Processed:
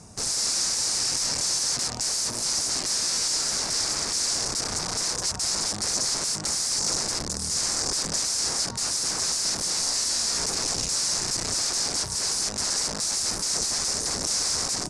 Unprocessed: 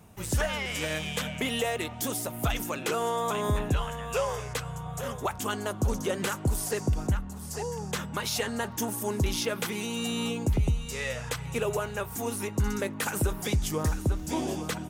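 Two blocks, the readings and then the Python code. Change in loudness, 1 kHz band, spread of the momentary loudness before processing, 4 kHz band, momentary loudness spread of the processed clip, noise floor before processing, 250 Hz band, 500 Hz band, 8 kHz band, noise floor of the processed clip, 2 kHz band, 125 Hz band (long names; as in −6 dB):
+6.5 dB, −2.5 dB, 5 LU, +12.5 dB, 2 LU, −40 dBFS, −7.5 dB, −7.5 dB, +15.0 dB, −32 dBFS, −2.0 dB, −11.0 dB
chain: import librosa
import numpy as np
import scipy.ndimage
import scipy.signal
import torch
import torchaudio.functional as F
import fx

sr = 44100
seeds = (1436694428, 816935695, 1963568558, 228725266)

y = (np.mod(10.0 ** (33.5 / 20.0) * x + 1.0, 2.0) - 1.0) / 10.0 ** (33.5 / 20.0)
y = scipy.signal.sosfilt(scipy.signal.butter(6, 9400.0, 'lowpass', fs=sr, output='sos'), y)
y = fx.high_shelf_res(y, sr, hz=4000.0, db=8.5, q=3.0)
y = F.gain(torch.from_numpy(y), 5.5).numpy()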